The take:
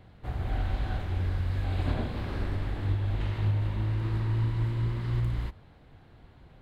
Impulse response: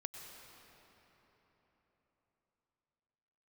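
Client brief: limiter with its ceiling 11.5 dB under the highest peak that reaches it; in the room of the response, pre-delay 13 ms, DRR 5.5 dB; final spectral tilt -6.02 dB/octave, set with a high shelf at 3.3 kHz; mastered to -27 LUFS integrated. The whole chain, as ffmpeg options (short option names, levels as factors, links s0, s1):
-filter_complex "[0:a]highshelf=f=3300:g=8.5,alimiter=level_in=1.33:limit=0.0631:level=0:latency=1,volume=0.75,asplit=2[s0][s1];[1:a]atrim=start_sample=2205,adelay=13[s2];[s1][s2]afir=irnorm=-1:irlink=0,volume=0.668[s3];[s0][s3]amix=inputs=2:normalize=0,volume=2.66"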